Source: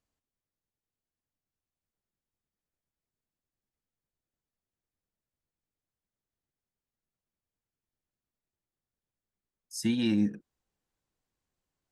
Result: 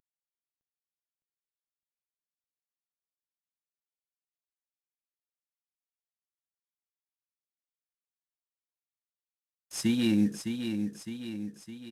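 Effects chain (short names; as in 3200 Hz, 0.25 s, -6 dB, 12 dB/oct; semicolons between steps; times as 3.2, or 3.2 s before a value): CVSD 64 kbps; feedback echo 0.61 s, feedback 54%, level -7 dB; gain +1.5 dB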